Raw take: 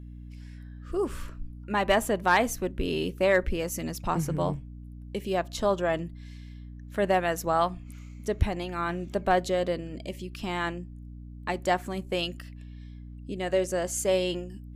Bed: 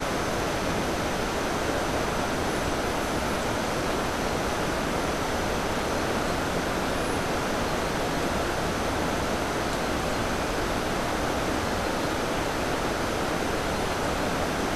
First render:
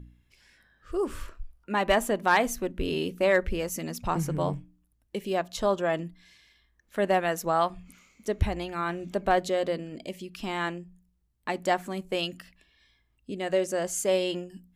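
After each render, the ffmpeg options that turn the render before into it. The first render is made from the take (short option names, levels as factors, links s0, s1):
-af "bandreject=f=60:t=h:w=4,bandreject=f=120:t=h:w=4,bandreject=f=180:t=h:w=4,bandreject=f=240:t=h:w=4,bandreject=f=300:t=h:w=4"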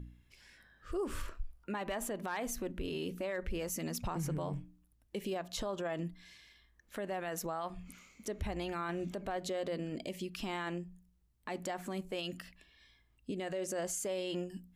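-af "acompressor=threshold=0.0316:ratio=2,alimiter=level_in=1.78:limit=0.0631:level=0:latency=1:release=46,volume=0.562"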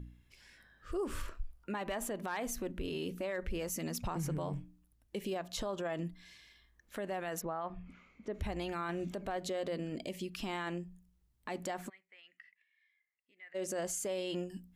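-filter_complex "[0:a]asplit=3[s0][s1][s2];[s0]afade=t=out:st=7.4:d=0.02[s3];[s1]lowpass=2100,afade=t=in:st=7.4:d=0.02,afade=t=out:st=8.33:d=0.02[s4];[s2]afade=t=in:st=8.33:d=0.02[s5];[s3][s4][s5]amix=inputs=3:normalize=0,asplit=3[s6][s7][s8];[s6]afade=t=out:st=11.88:d=0.02[s9];[s7]bandpass=f=2000:t=q:w=9.6,afade=t=in:st=11.88:d=0.02,afade=t=out:st=13.54:d=0.02[s10];[s8]afade=t=in:st=13.54:d=0.02[s11];[s9][s10][s11]amix=inputs=3:normalize=0"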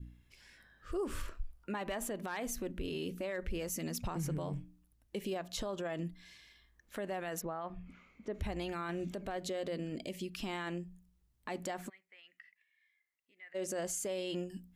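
-af "adynamicequalizer=threshold=0.00224:dfrequency=940:dqfactor=1.1:tfrequency=940:tqfactor=1.1:attack=5:release=100:ratio=0.375:range=2:mode=cutabove:tftype=bell"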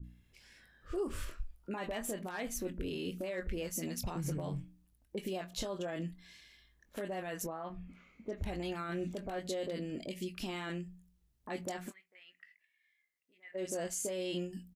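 -filter_complex "[0:a]asplit=2[s0][s1];[s1]adelay=22,volume=0.266[s2];[s0][s2]amix=inputs=2:normalize=0,acrossover=split=1100[s3][s4];[s4]adelay=30[s5];[s3][s5]amix=inputs=2:normalize=0"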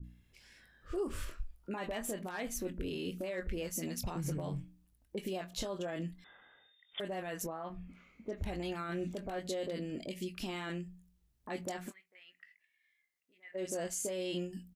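-filter_complex "[0:a]asettb=1/sr,asplit=3[s0][s1][s2];[s0]atrim=end=6.244[s3];[s1]atrim=start=6.24:end=7,asetpts=PTS-STARTPTS,afade=t=in:d=0.004:c=qsin,afade=t=out:st=0.756:d=0.004:c=qsin,lowpass=f=3100:t=q:w=0.5098,lowpass=f=3100:t=q:w=0.6013,lowpass=f=3100:t=q:w=0.9,lowpass=f=3100:t=q:w=2.563,afreqshift=-3700[s4];[s2]atrim=start=6.996[s5];[s3][s4]acrossfade=d=0.004:c1=hsin:c2=qsin[s6];[s6][s5]acrossfade=d=0.004:c1=qsin:c2=hsin"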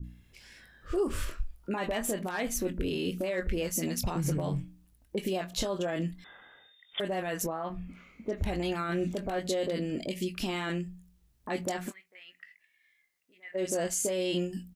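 -af "volume=2.24"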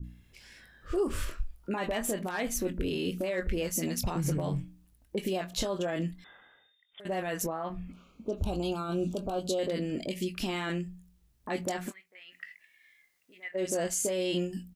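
-filter_complex "[0:a]asettb=1/sr,asplit=3[s0][s1][s2];[s0]atrim=end=7.924[s3];[s1]atrim=start=7.92:end=9.59,asetpts=PTS-STARTPTS,afade=t=in:d=0.004:c=qsin,afade=t=out:st=1.666:d=0.004:c=qsin,asuperstop=centerf=1900:order=4:qfactor=1.3[s4];[s2]atrim=start=9.586[s5];[s3][s4]acrossfade=d=0.004:c1=hsin:c2=qsin[s6];[s6][s5]acrossfade=d=0.004:c1=qsin:c2=hsin,asplit=3[s7][s8][s9];[s7]afade=t=out:st=12.31:d=0.02[s10];[s8]acontrast=65,afade=t=in:st=12.31:d=0.02,afade=t=out:st=13.47:d=0.02[s11];[s9]afade=t=in:st=13.47:d=0.02[s12];[s10][s11][s12]amix=inputs=3:normalize=0,asplit=2[s13][s14];[s13]atrim=end=7.05,asetpts=PTS-STARTPTS,afade=t=out:st=6.03:d=1.02:silence=0.112202[s15];[s14]atrim=start=7.05,asetpts=PTS-STARTPTS,afade=t=in:d=0.004:c=hsin:silence=0.112202[s16];[s15][s16]concat=n=2:v=0:a=1"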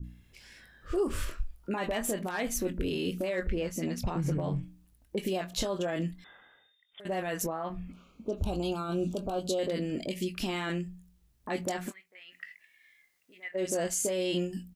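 -filter_complex "[0:a]asettb=1/sr,asplit=3[s0][s1][s2];[s0]atrim=end=3.474[s3];[s1]atrim=start=3.47:end=4.63,asetpts=PTS-STARTPTS,afade=t=in:d=0.004:c=qsin,afade=t=out:st=1.156:d=0.004:c=qsin,lowpass=f=2600:p=1[s4];[s2]atrim=start=4.626[s5];[s3][s4]acrossfade=d=0.004:c1=hsin:c2=qsin[s6];[s6][s5]acrossfade=d=0.004:c1=qsin:c2=hsin"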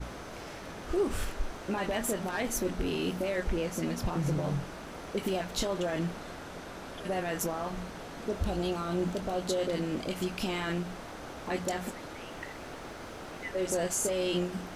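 -filter_complex "[1:a]volume=0.158[s0];[0:a][s0]amix=inputs=2:normalize=0"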